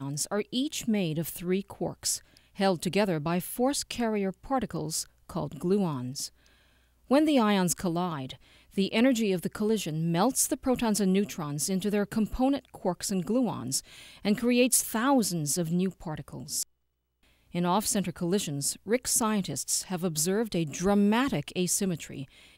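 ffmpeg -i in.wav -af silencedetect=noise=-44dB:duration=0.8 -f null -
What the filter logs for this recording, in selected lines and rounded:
silence_start: 16.63
silence_end: 17.54 | silence_duration: 0.91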